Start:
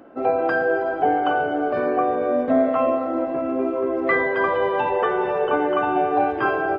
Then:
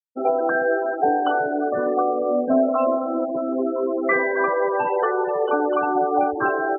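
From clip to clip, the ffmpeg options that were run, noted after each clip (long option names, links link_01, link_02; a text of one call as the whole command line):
ffmpeg -i in.wav -af "afftfilt=real='re*gte(hypot(re,im),0.0891)':imag='im*gte(hypot(re,im),0.0891)':win_size=1024:overlap=0.75" out.wav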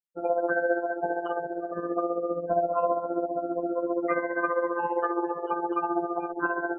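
ffmpeg -i in.wav -af "afftfilt=real='hypot(re,im)*cos(PI*b)':imag='0':win_size=1024:overlap=0.75,tremolo=f=15:d=0.62" out.wav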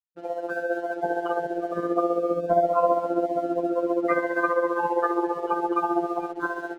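ffmpeg -i in.wav -filter_complex "[0:a]dynaudnorm=framelen=260:gausssize=7:maxgain=11.5dB,acrossover=split=330[link_01][link_02];[link_02]aeval=exprs='sgn(val(0))*max(abs(val(0))-0.00473,0)':channel_layout=same[link_03];[link_01][link_03]amix=inputs=2:normalize=0,volume=-5dB" out.wav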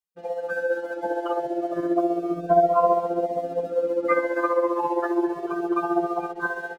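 ffmpeg -i in.wav -filter_complex "[0:a]asplit=2[link_01][link_02];[link_02]adelay=2.1,afreqshift=0.31[link_03];[link_01][link_03]amix=inputs=2:normalize=1,volume=4dB" out.wav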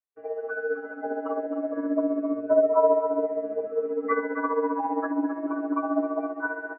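ffmpeg -i in.wav -af "aecho=1:1:264:0.299,highpass=frequency=320:width_type=q:width=0.5412,highpass=frequency=320:width_type=q:width=1.307,lowpass=frequency=2100:width_type=q:width=0.5176,lowpass=frequency=2100:width_type=q:width=0.7071,lowpass=frequency=2100:width_type=q:width=1.932,afreqshift=-58,volume=-2.5dB" out.wav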